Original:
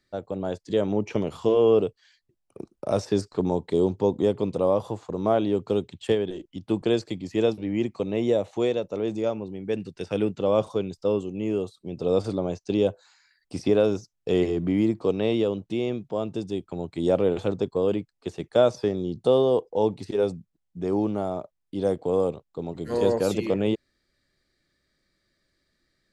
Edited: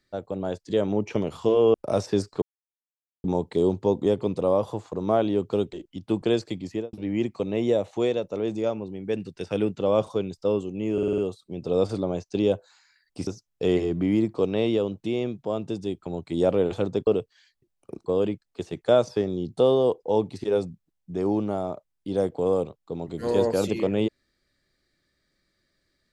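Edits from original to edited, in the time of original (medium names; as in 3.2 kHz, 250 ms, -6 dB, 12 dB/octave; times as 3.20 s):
1.74–2.73 s: move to 17.73 s
3.41 s: insert silence 0.82 s
5.90–6.33 s: delete
7.27–7.53 s: studio fade out
11.53 s: stutter 0.05 s, 6 plays
13.62–13.93 s: delete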